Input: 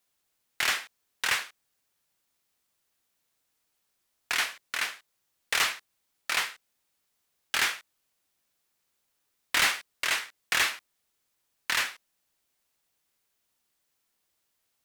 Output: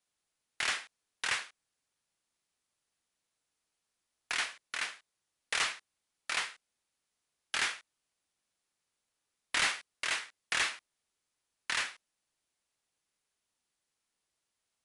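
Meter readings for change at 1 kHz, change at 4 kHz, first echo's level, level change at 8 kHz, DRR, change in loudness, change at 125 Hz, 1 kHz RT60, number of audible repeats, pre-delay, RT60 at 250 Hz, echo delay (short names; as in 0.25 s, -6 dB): -5.5 dB, -5.5 dB, none, -5.5 dB, none, -5.5 dB, -5.5 dB, none, none, none, none, none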